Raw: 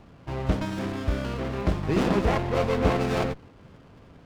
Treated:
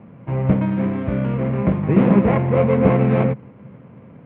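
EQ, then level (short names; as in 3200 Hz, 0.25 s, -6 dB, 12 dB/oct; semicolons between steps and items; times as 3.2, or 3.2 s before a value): air absorption 350 m; speaker cabinet 130–3100 Hz, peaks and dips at 130 Hz +9 dB, 210 Hz +10 dB, 520 Hz +7 dB, 1000 Hz +4 dB, 2200 Hz +7 dB; low shelf 270 Hz +6 dB; +2.0 dB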